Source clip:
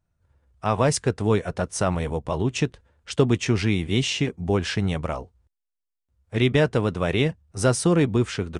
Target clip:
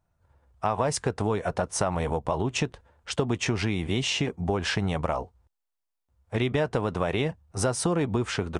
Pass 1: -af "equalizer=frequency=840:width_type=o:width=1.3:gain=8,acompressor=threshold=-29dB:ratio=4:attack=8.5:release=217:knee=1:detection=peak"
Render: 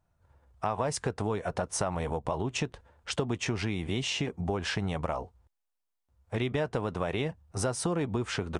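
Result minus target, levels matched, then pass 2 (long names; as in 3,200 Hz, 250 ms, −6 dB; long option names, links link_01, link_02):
downward compressor: peak gain reduction +4.5 dB
-af "equalizer=frequency=840:width_type=o:width=1.3:gain=8,acompressor=threshold=-23dB:ratio=4:attack=8.5:release=217:knee=1:detection=peak"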